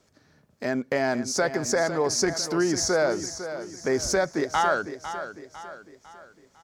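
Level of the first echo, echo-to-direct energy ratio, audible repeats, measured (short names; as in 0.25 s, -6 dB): -11.0 dB, -10.0 dB, 4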